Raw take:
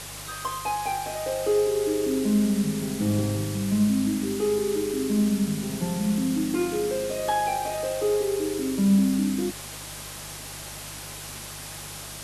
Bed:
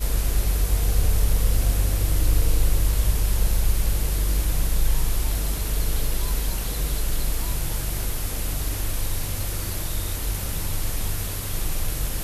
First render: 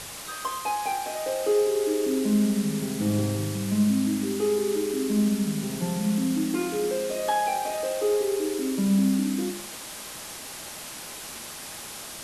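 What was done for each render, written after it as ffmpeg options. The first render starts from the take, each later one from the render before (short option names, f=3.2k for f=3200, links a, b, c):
-af "bandreject=f=50:t=h:w=4,bandreject=f=100:t=h:w=4,bandreject=f=150:t=h:w=4,bandreject=f=200:t=h:w=4,bandreject=f=250:t=h:w=4,bandreject=f=300:t=h:w=4,bandreject=f=350:t=h:w=4"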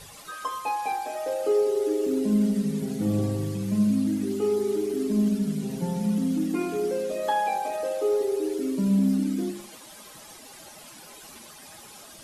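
-af "afftdn=nr=12:nf=-39"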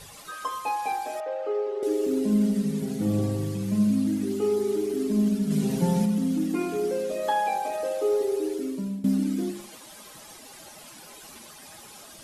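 -filter_complex "[0:a]asettb=1/sr,asplit=3[a][b][c];[a]atrim=end=1.204[d];[b]atrim=start=1.2:end=1.83,asetpts=PTS-STARTPTS,afade=t=in:d=0.004:c=qsin,afade=t=out:st=0.626:d=0.004:c=qsin,highpass=540,lowpass=2.2k[e];[c]atrim=start=1.826[f];[d][e]acrossfade=d=0.004:c1=hsin:c2=qsin[g];[g][f]acrossfade=d=0.004:c1=qsin:c2=hsin,asplit=3[h][i][j];[h]afade=t=out:st=5.5:d=0.02[k];[i]acontrast=35,afade=t=in:st=5.5:d=0.02,afade=t=out:st=6.04:d=0.02[l];[j]afade=t=in:st=6.04:d=0.02[m];[k][l][m]amix=inputs=3:normalize=0,asplit=2[n][o];[n]atrim=end=9.04,asetpts=PTS-STARTPTS,afade=t=out:st=8.28:d=0.76:c=qsin:silence=0.105925[p];[o]atrim=start=9.04,asetpts=PTS-STARTPTS,afade=t=in:d=0.004:c=hsin:silence=0.105925[q];[p][q]concat=n=2:v=0:a=1"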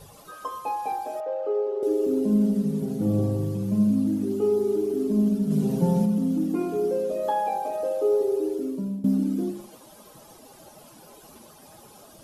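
-af "equalizer=f=125:t=o:w=1:g=3,equalizer=f=500:t=o:w=1:g=3,equalizer=f=2k:t=o:w=1:g=-10,equalizer=f=4k:t=o:w=1:g=-5,equalizer=f=8k:t=o:w=1:g=-7"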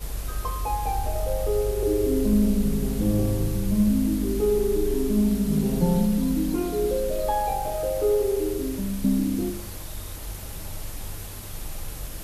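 -filter_complex "[1:a]volume=-8.5dB[a];[0:a][a]amix=inputs=2:normalize=0"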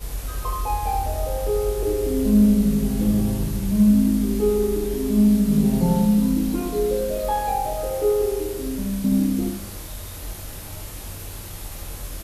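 -filter_complex "[0:a]asplit=2[a][b];[b]adelay=24,volume=-6dB[c];[a][c]amix=inputs=2:normalize=0,asplit=2[d][e];[e]aecho=0:1:76:0.531[f];[d][f]amix=inputs=2:normalize=0"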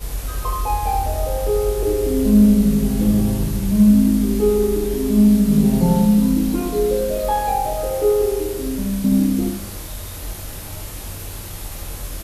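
-af "volume=3.5dB"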